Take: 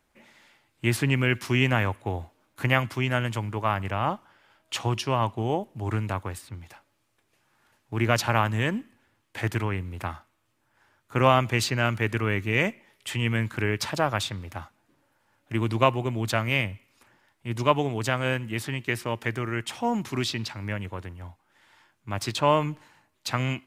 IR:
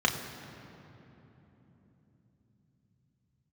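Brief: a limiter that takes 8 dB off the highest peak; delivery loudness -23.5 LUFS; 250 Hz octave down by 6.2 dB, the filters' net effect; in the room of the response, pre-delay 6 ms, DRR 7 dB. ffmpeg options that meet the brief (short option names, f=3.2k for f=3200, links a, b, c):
-filter_complex "[0:a]equalizer=f=250:t=o:g=-8.5,alimiter=limit=-14dB:level=0:latency=1,asplit=2[a][b];[1:a]atrim=start_sample=2205,adelay=6[c];[b][c]afir=irnorm=-1:irlink=0,volume=-19dB[d];[a][d]amix=inputs=2:normalize=0,volume=5.5dB"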